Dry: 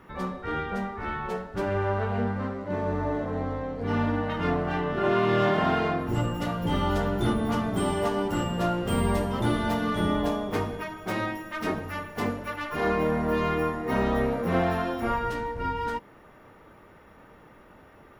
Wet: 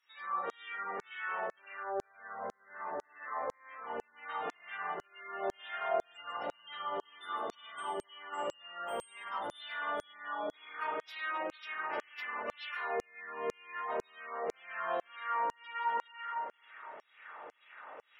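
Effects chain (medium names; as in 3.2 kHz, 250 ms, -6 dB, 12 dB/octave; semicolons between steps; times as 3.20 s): treble shelf 10 kHz -6.5 dB; spring tank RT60 1.8 s, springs 33/51 ms, chirp 60 ms, DRR 0 dB; reverse; compression 6:1, threshold -33 dBFS, peak gain reduction 19 dB; reverse; spectral gate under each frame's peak -30 dB strong; LFO high-pass saw down 2 Hz 490–6700 Hz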